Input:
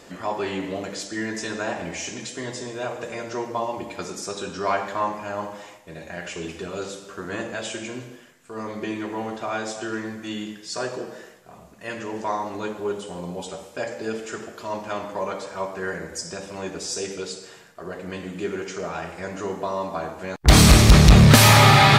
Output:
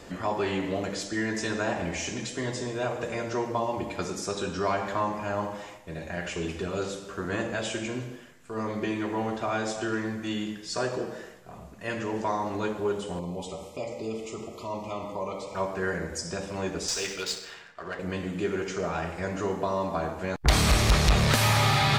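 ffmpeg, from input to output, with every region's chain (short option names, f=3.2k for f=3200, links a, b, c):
-filter_complex "[0:a]asettb=1/sr,asplit=3[a][b][c];[a]atrim=end=13.194[d];[b]atrim=start=13.19:end=15.55,asetpts=PTS-STARTPTS,afade=t=in:d=0.004:c=qsin,afade=t=out:st=2.356:d=0.004:c=qsin,acompressor=threshold=-38dB:ratio=1.5:attack=3.2:release=140:knee=1:detection=peak,asuperstop=centerf=1600:order=20:qfactor=2.6[e];[c]atrim=start=15.546[f];[d][e]acrossfade=d=0.004:c1=hsin:c2=qsin[g];[g][f]acrossfade=d=0.004:c1=qsin:c2=hsin,asettb=1/sr,asplit=3[h][i][j];[h]atrim=end=16.884[k];[i]atrim=start=16.88:end=17.99,asetpts=PTS-STARTPTS,afade=t=in:d=0.004:c=qsin,afade=t=out:st=1.106:d=0.004:c=qsin,tiltshelf=f=900:g=-9.5,adynamicsmooth=sensitivity=6.5:basefreq=2.9k[l];[j]atrim=start=17.986[m];[k][l]acrossfade=d=0.004:c1=hsin:c2=qsin[n];[n][m]acrossfade=d=0.004:c1=qsin:c2=hsin,highshelf=f=4.5k:g=-3.5,acrossover=split=420|3400[o][p][q];[o]acompressor=threshold=-31dB:ratio=4[r];[p]acompressor=threshold=-26dB:ratio=4[s];[q]acompressor=threshold=-30dB:ratio=4[t];[r][s][t]amix=inputs=3:normalize=0,lowshelf=f=97:g=11.5"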